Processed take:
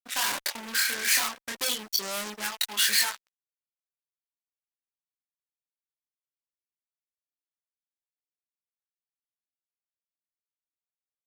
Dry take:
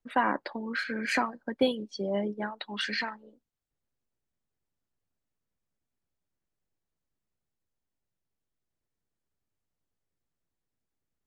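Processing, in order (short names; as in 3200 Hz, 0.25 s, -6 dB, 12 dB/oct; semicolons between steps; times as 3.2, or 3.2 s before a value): chorus 0.38 Hz, depth 7.9 ms; fuzz box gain 40 dB, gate -49 dBFS; pre-emphasis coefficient 0.97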